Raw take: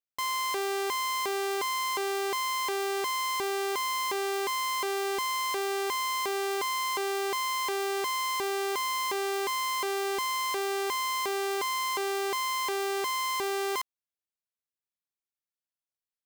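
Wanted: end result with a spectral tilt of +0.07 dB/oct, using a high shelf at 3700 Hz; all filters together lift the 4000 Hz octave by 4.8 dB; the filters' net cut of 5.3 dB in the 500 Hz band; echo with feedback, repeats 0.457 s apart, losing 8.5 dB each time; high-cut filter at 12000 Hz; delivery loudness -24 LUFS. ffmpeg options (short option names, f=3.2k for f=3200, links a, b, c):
-af "lowpass=12k,equalizer=f=500:t=o:g=-8,highshelf=f=3.7k:g=4.5,equalizer=f=4k:t=o:g=3.5,aecho=1:1:457|914|1371|1828:0.376|0.143|0.0543|0.0206,volume=4dB"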